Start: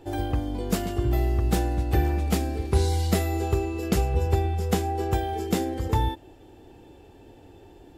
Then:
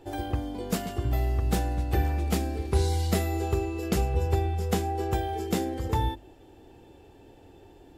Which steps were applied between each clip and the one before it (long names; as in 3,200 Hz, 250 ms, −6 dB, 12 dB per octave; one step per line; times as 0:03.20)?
mains-hum notches 50/100/150/200/250/300/350 Hz
level −2 dB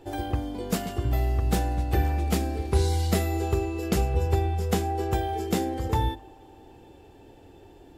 feedback echo with a band-pass in the loop 88 ms, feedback 84%, band-pass 860 Hz, level −22 dB
level +1.5 dB